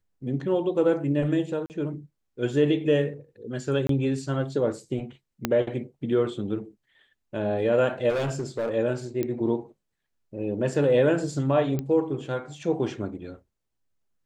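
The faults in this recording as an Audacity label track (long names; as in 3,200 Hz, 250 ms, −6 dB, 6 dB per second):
1.660000	1.700000	drop-out 39 ms
3.870000	3.890000	drop-out 23 ms
5.450000	5.450000	click −9 dBFS
8.090000	8.700000	clipping −23.5 dBFS
9.230000	9.230000	click −16 dBFS
11.790000	11.790000	click −17 dBFS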